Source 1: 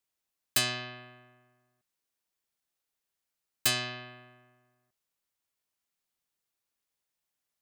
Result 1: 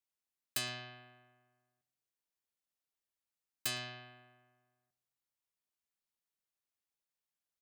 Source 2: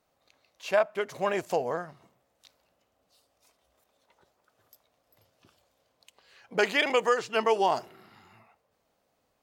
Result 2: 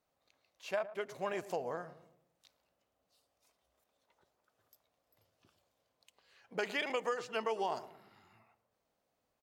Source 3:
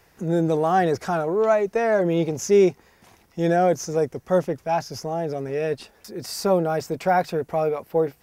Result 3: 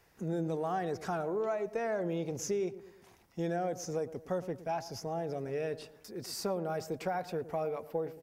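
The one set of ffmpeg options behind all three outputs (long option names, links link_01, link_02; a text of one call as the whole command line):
ffmpeg -i in.wav -filter_complex "[0:a]acompressor=threshold=-22dB:ratio=6,asplit=2[link_01][link_02];[link_02]adelay=112,lowpass=frequency=990:poles=1,volume=-13.5dB,asplit=2[link_03][link_04];[link_04]adelay=112,lowpass=frequency=990:poles=1,volume=0.47,asplit=2[link_05][link_06];[link_06]adelay=112,lowpass=frequency=990:poles=1,volume=0.47,asplit=2[link_07][link_08];[link_08]adelay=112,lowpass=frequency=990:poles=1,volume=0.47,asplit=2[link_09][link_10];[link_10]adelay=112,lowpass=frequency=990:poles=1,volume=0.47[link_11];[link_03][link_05][link_07][link_09][link_11]amix=inputs=5:normalize=0[link_12];[link_01][link_12]amix=inputs=2:normalize=0,volume=-8.5dB" out.wav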